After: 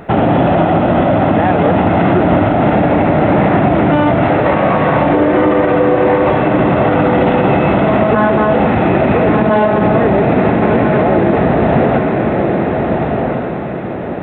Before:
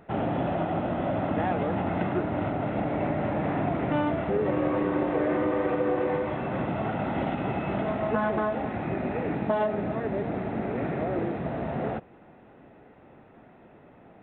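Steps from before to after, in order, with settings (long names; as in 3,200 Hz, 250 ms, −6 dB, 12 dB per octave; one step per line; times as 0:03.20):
0:04.24–0:05.10: Butterworth high-pass 560 Hz 36 dB per octave
feedback delay with all-pass diffusion 1,329 ms, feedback 43%, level −5 dB
boost into a limiter +21.5 dB
level −2 dB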